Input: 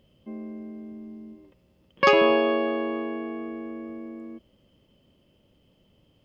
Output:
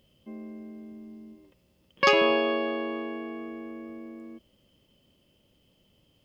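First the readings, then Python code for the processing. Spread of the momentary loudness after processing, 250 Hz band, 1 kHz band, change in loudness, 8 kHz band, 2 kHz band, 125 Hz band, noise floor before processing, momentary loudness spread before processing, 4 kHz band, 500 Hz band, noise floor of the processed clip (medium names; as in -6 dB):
23 LU, -4.0 dB, -3.0 dB, -2.0 dB, no reading, -1.0 dB, -4.0 dB, -64 dBFS, 22 LU, +1.0 dB, -3.5 dB, -67 dBFS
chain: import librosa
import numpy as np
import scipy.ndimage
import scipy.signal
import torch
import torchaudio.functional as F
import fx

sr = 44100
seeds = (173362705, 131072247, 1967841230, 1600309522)

y = fx.high_shelf(x, sr, hz=3000.0, db=10.0)
y = y * librosa.db_to_amplitude(-4.0)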